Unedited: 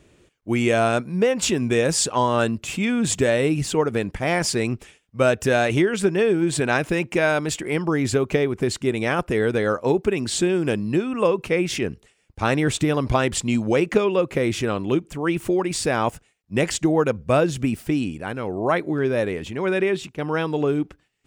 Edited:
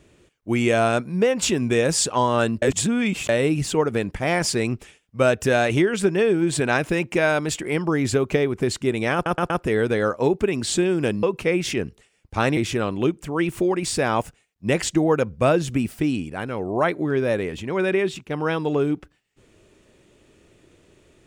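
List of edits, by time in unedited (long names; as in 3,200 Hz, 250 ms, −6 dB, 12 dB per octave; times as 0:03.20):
0:02.62–0:03.29: reverse
0:09.14: stutter 0.12 s, 4 plays
0:10.87–0:11.28: remove
0:12.62–0:14.45: remove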